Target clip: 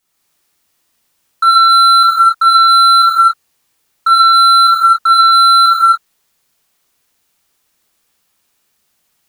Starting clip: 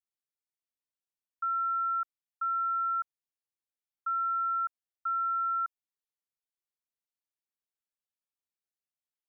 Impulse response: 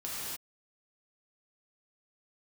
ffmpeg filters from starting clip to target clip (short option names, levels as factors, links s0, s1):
-filter_complex "[0:a]asoftclip=type=hard:threshold=0.0282[s0];[1:a]atrim=start_sample=2205[s1];[s0][s1]afir=irnorm=-1:irlink=0,alimiter=level_in=28.2:limit=0.891:release=50:level=0:latency=1,volume=0.891"